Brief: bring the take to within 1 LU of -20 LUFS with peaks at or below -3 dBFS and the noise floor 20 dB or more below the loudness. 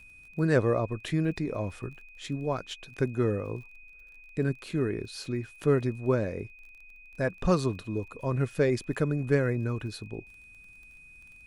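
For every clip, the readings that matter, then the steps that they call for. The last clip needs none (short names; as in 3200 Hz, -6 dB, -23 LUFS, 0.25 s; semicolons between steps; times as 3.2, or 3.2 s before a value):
ticks 27/s; steady tone 2500 Hz; tone level -50 dBFS; loudness -30.0 LUFS; peak -10.0 dBFS; loudness target -20.0 LUFS
-> de-click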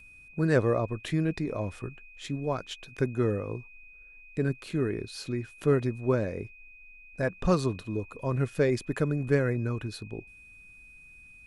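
ticks 0.087/s; steady tone 2500 Hz; tone level -50 dBFS
-> notch 2500 Hz, Q 30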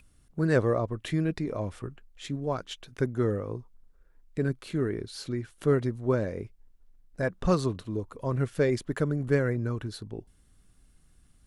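steady tone none; loudness -30.0 LUFS; peak -10.0 dBFS; loudness target -20.0 LUFS
-> gain +10 dB; limiter -3 dBFS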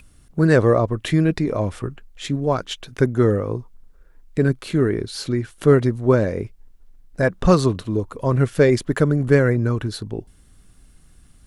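loudness -20.0 LUFS; peak -3.0 dBFS; noise floor -51 dBFS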